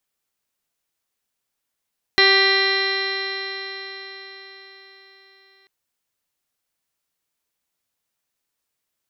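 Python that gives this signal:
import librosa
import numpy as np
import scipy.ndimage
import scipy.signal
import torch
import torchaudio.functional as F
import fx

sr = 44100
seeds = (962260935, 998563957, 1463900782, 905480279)

y = fx.additive_stiff(sr, length_s=3.49, hz=387.0, level_db=-19.0, upper_db=(-7, -6, -6.5, 4.5, -5, -9.0, -6.5, -9, 3.0, -16.5, -17.0, -11.5), decay_s=4.8, stiffness=0.0011)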